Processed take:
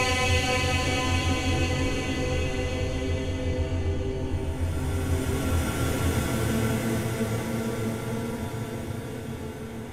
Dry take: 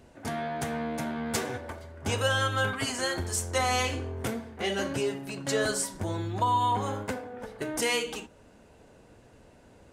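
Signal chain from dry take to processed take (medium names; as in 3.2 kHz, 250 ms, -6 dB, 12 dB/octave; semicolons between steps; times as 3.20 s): octave divider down 1 oct, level -1 dB; gated-style reverb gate 280 ms falling, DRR 1 dB; Paulstretch 15×, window 0.25 s, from 3.87 s; trim +1.5 dB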